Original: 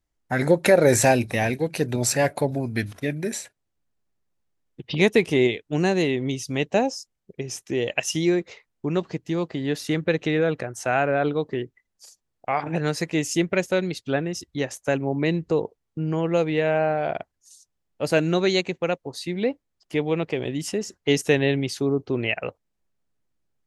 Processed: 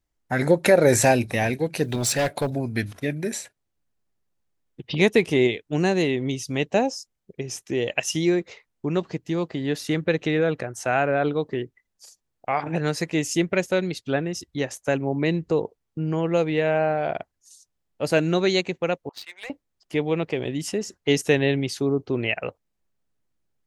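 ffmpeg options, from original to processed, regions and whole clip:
-filter_complex "[0:a]asettb=1/sr,asplit=3[s0][s1][s2];[s0]atrim=end=1.844[s3];[s1]atrim=start=1.84:end=2.5,asetpts=PTS-STARTPTS,afade=t=in:d=0.004:c=qsin,afade=t=out:st=0.656:d=0.004:c=qsin,equalizer=f=3500:t=o:w=0.61:g=8,acrusher=bits=9:mode=log:mix=0:aa=0.000001,asoftclip=type=hard:threshold=0.126[s4];[s2]atrim=start=2.496[s5];[s3][s4]acrossfade=d=0.004:c1=hsin:c2=qsin[s6];[s6][s5]acrossfade=d=0.004:c1=qsin:c2=hsin,asettb=1/sr,asplit=3[s7][s8][s9];[s7]atrim=end=19.094[s10];[s8]atrim=start=19.09:end=19.5,asetpts=PTS-STARTPTS,afade=t=in:d=0.004:c=qsin,afade=t=out:st=0.406:d=0.004:c=qsin,highpass=f=890:w=0.5412,highpass=f=890:w=1.3066,adynamicsmooth=sensitivity=7.5:basefreq=1300[s11];[s9]atrim=start=19.496[s12];[s10][s11]acrossfade=d=0.004:c1=hsin:c2=qsin[s13];[s13][s12]acrossfade=d=0.004:c1=qsin:c2=hsin"

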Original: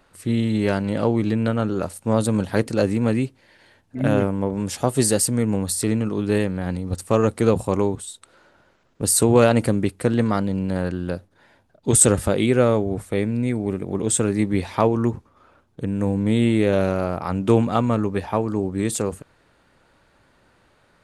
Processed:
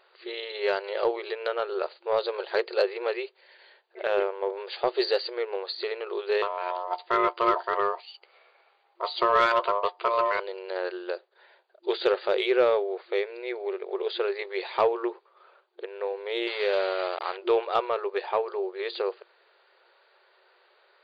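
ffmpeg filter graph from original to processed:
-filter_complex "[0:a]asettb=1/sr,asplit=3[s0][s1][s2];[s0]atrim=end=6.424[s3];[s1]atrim=start=6.42:end=10.4,asetpts=PTS-STARTPTS,afade=t=in:d=0.004:c=qsin,afade=t=out:st=3.976:d=0.004:c=qsin,asplit=2[s4][s5];[s5]adelay=13,volume=0.266[s6];[s4][s6]amix=inputs=2:normalize=0,atrim=end_sample=175518,aeval=exprs='val(0)*sin(2*PI*810*n/s)':c=same[s7];[s2]atrim=start=10.396[s8];[s3][s7]acrossfade=d=0.004:c1=hsin:c2=qsin[s9];[s9][s8]acrossfade=d=0.004:c1=qsin:c2=hsin,asettb=1/sr,asplit=3[s10][s11][s12];[s10]atrim=end=16.474[s13];[s11]atrim=start=16.47:end=17.37,asetpts=PTS-STARTPTS,afade=t=in:d=0.004:c=qsin,afade=t=out:st=0.896:d=0.004:c=qsin,highpass=130,acrusher=bits=4:mix=0:aa=0.5,equalizer=f=230:w=0.56:g=-5[s14];[s12]atrim=start=17.366[s15];[s13][s14]acrossfade=d=0.004:c1=hsin:c2=qsin[s16];[s16][s15]acrossfade=d=0.004:c1=qsin:c2=hsin,aemphasis=mode=production:type=cd,afftfilt=real='re*between(b*sr/4096,350,4800)':imag='im*between(b*sr/4096,350,4800)':win_size=4096:overlap=0.75,acontrast=60,volume=0.398"

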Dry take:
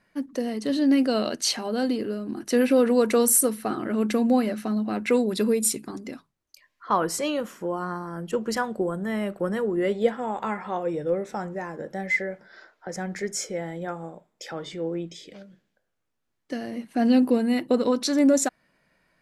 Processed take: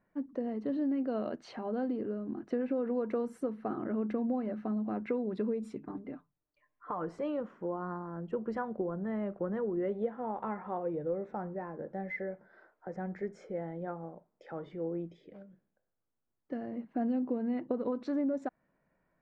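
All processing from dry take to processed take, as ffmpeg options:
-filter_complex "[0:a]asettb=1/sr,asplit=3[s0][s1][s2];[s0]atrim=end=5.784[s3];[s1]atrim=start=5.78:end=7.08,asetpts=PTS-STARTPTS,afade=t=in:d=0.004:c=qsin,afade=t=out:st=1.296:d=0.004:c=qsin,aecho=1:1:6.7:0.55,atrim=end_sample=57330,acompressor=threshold=0.0631:ratio=6:attack=3.2:release=140:knee=1:detection=peak,lowpass=f=3600:w=0.5412,lowpass=f=3600:w=1.3066[s4];[s2]atrim=start=7.076[s5];[s3][s4]acrossfade=d=0.004:c1=hsin:c2=qsin[s6];[s6][s5]acrossfade=d=0.004:c1=qsin:c2=hsin,lowpass=1200,acompressor=threshold=0.0708:ratio=6,volume=0.501"

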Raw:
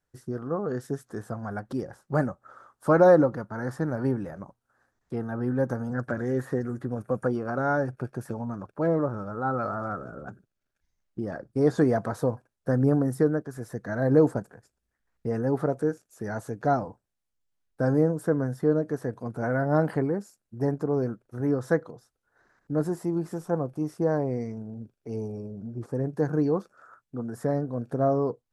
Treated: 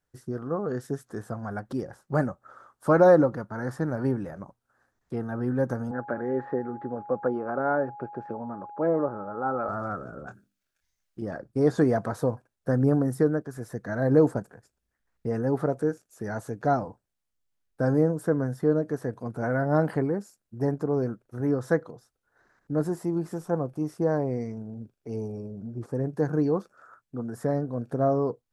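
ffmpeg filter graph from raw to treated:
-filter_complex "[0:a]asettb=1/sr,asplit=3[s0][s1][s2];[s0]atrim=end=5.914[s3];[s1]atrim=start=5.91:end=9.69,asetpts=PTS-STARTPTS,afade=t=in:d=0.004:c=qsin,afade=t=out:st=3.776:d=0.004:c=qsin,highpass=410,lowpass=2600,aemphasis=mode=reproduction:type=riaa,aeval=exprs='val(0)+0.01*sin(2*PI*830*n/s)':c=same[s4];[s2]atrim=start=9.686[s5];[s3][s4]acrossfade=d=0.004:c1=hsin:c2=qsin[s6];[s6][s5]acrossfade=d=0.004:c1=qsin:c2=hsin,asettb=1/sr,asplit=3[s7][s8][s9];[s7]atrim=end=10.274[s10];[s8]atrim=start=10.27:end=11.22,asetpts=PTS-STARTPTS,afade=t=in:d=0.004:c=qsin,afade=t=out:st=0.946:d=0.004:c=qsin,tiltshelf=f=1200:g=-5.5,bandreject=f=50:t=h:w=6,bandreject=f=100:t=h:w=6,bandreject=f=150:t=h:w=6,bandreject=f=200:t=h:w=6,bandreject=f=250:t=h:w=6,bandreject=f=300:t=h:w=6,asplit=2[s11][s12];[s12]adelay=24,volume=0.447[s13];[s11][s13]amix=inputs=2:normalize=0,atrim=end_sample=41895[s14];[s9]atrim=start=11.216[s15];[s10][s14]acrossfade=d=0.004:c1=hsin:c2=qsin[s16];[s16][s15]acrossfade=d=0.004:c1=qsin:c2=hsin"

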